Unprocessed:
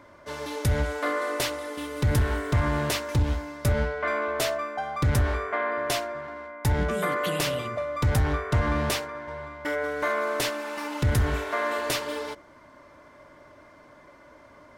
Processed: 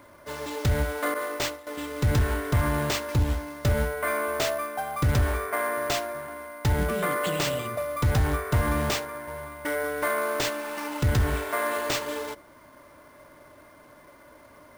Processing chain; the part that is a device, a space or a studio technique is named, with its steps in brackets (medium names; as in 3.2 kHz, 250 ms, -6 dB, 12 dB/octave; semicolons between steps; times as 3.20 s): early companding sampler (sample-rate reducer 11 kHz, jitter 0%; companded quantiser 6-bit); 1.14–1.67 s: expander -25 dBFS